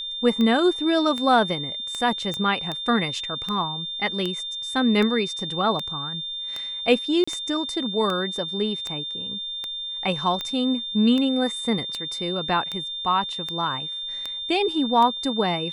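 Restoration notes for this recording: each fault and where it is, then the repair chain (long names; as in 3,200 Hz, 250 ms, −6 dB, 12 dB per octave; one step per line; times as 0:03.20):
scratch tick 78 rpm −15 dBFS
whistle 3,600 Hz −29 dBFS
0:02.34: click −15 dBFS
0:07.24–0:07.28: drop-out 35 ms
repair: click removal
notch filter 3,600 Hz, Q 30
repair the gap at 0:07.24, 35 ms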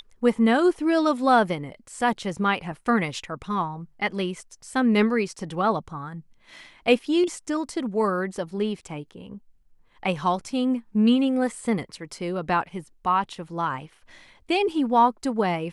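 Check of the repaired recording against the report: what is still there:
none of them is left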